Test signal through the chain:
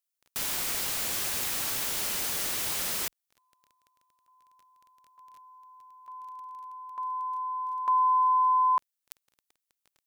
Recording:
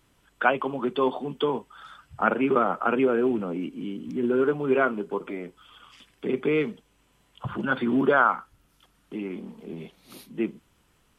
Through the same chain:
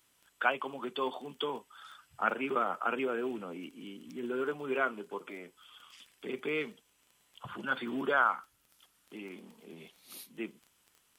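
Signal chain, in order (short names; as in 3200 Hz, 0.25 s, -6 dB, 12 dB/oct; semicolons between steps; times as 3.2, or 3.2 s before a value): tilt +3 dB/oct; crackle 13/s -37 dBFS; gain -7.5 dB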